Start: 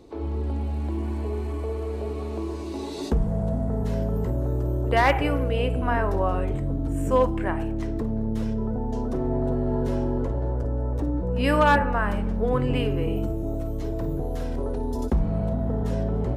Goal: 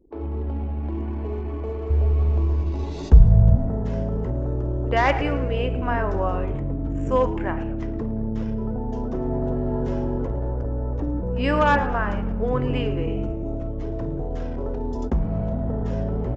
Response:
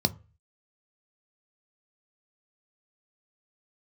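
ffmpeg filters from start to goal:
-filter_complex "[0:a]asettb=1/sr,asplit=3[s0][s1][s2];[s0]atrim=end=1.904[s3];[s1]atrim=start=1.9:end=3.56,asetpts=PTS-STARTPTS,afade=t=in:d=0.004:c=qsin,afade=t=out:st=1.656:d=0.004:c=qsin,lowshelf=f=160:t=q:w=1.5:g=12[s4];[s2]atrim=start=3.556[s5];[s3][s4]acrossfade=d=0.004:c1=hsin:c2=qsin[s6];[s6][s5]acrossfade=d=0.004:c1=qsin:c2=hsin,aresample=16000,aresample=44100,equalizer=f=4100:w=4.5:g=-6,asplit=2[s7][s8];[s8]asplit=5[s9][s10][s11][s12][s13];[s9]adelay=110,afreqshift=-80,volume=0.178[s14];[s10]adelay=220,afreqshift=-160,volume=0.0923[s15];[s11]adelay=330,afreqshift=-240,volume=0.0479[s16];[s12]adelay=440,afreqshift=-320,volume=0.0251[s17];[s13]adelay=550,afreqshift=-400,volume=0.013[s18];[s14][s15][s16][s17][s18]amix=inputs=5:normalize=0[s19];[s7][s19]amix=inputs=2:normalize=0,anlmdn=0.251"

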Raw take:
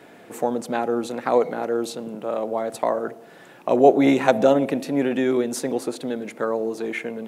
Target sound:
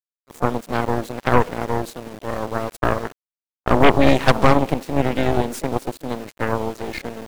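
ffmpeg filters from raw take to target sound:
-filter_complex "[0:a]aeval=exprs='val(0)*gte(abs(val(0)),0.0266)':c=same,asplit=2[s0][s1];[s1]asetrate=52444,aresample=44100,atempo=0.840896,volume=0.251[s2];[s0][s2]amix=inputs=2:normalize=0,aeval=exprs='1.12*(cos(1*acos(clip(val(0)/1.12,-1,1)))-cos(1*PI/2))+0.398*(cos(8*acos(clip(val(0)/1.12,-1,1)))-cos(8*PI/2))':c=same,volume=0.708"

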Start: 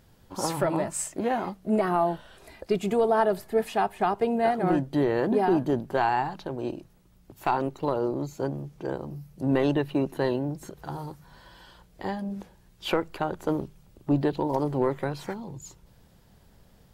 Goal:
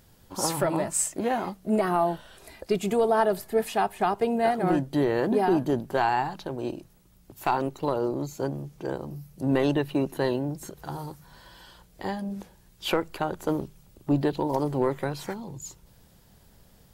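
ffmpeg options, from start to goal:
-af "highshelf=f=5000:g=7.5"

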